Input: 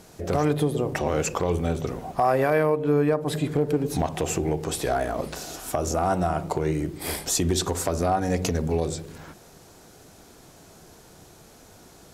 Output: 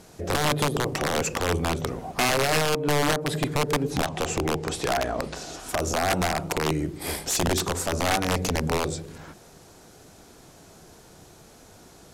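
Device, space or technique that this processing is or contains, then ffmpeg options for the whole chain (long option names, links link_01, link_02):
overflowing digital effects unit: -filter_complex "[0:a]asettb=1/sr,asplit=3[link_01][link_02][link_03];[link_01]atrim=end=3.904[link_04];[link_02]atrim=start=3.9:end=5.69,asetpts=PTS-STARTPTS,afade=type=in:duration=0.004:curve=qsin,afade=type=out:start_time=1.786:duration=0.004:curve=qsin,lowpass=7800[link_05];[link_03]atrim=start=5.686[link_06];[link_04][link_05]acrossfade=duration=0.004:curve1=hsin:curve2=qsin[link_07];[link_07][link_06]acrossfade=duration=0.004:curve1=qsin:curve2=hsin,aeval=exprs='(mod(6.31*val(0)+1,2)-1)/6.31':channel_layout=same,lowpass=13000"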